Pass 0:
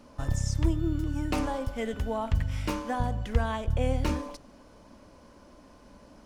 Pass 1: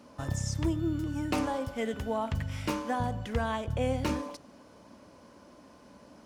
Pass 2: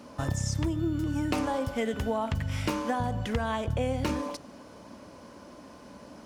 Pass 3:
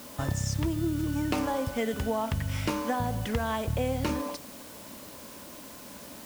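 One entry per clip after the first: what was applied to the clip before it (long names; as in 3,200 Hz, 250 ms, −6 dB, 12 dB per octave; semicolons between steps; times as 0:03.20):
high-pass filter 100 Hz 12 dB per octave
downward compressor, threshold −31 dBFS, peak gain reduction 7.5 dB; level +6 dB
bit-depth reduction 8 bits, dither triangular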